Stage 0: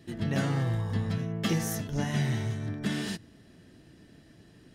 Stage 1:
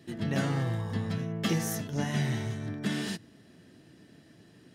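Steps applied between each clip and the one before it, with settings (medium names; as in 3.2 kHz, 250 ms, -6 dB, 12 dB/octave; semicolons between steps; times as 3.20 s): high-pass 110 Hz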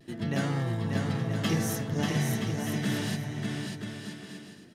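vibrato 0.54 Hz 24 cents; on a send: bouncing-ball echo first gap 590 ms, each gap 0.65×, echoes 5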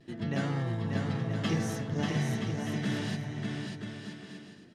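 distance through air 63 m; trim -2 dB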